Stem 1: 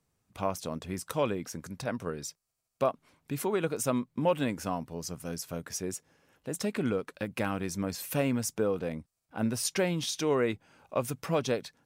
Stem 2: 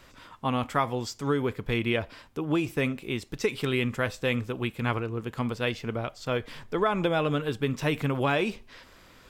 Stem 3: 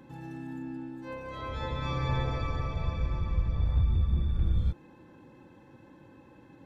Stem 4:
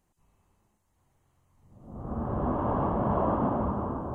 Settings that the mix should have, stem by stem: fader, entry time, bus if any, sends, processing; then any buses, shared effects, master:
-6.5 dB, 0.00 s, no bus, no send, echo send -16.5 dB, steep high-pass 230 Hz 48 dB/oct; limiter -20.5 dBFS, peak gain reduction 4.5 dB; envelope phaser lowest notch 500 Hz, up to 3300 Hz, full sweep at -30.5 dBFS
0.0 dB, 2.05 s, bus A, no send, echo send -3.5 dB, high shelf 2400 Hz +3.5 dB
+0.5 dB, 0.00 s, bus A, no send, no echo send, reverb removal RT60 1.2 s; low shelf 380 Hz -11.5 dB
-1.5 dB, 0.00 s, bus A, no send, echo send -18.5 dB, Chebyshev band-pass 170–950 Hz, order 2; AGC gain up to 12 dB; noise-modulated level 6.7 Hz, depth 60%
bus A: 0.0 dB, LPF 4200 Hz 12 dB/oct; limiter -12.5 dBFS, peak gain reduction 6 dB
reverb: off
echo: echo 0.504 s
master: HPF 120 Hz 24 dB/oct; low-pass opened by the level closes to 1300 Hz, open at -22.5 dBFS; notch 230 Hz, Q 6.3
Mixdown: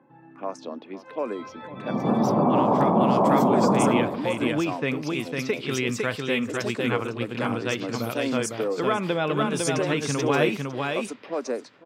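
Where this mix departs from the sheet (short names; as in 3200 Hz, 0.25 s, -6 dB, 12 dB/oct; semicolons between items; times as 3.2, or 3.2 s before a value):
stem 1 -6.5 dB -> +3.0 dB; stem 4 -1.5 dB -> +6.5 dB; master: missing notch 230 Hz, Q 6.3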